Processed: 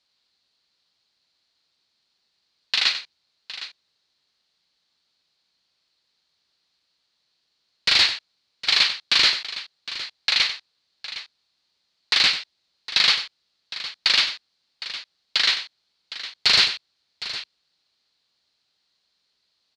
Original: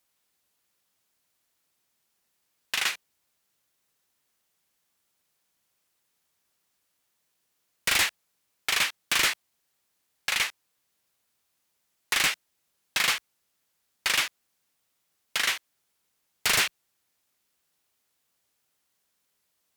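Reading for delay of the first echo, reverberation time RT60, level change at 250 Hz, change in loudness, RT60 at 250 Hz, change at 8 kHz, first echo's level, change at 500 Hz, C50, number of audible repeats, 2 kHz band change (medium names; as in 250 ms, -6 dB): 95 ms, no reverb, +0.5 dB, +5.5 dB, no reverb, -4.0 dB, -11.0 dB, +0.5 dB, no reverb, 2, +3.0 dB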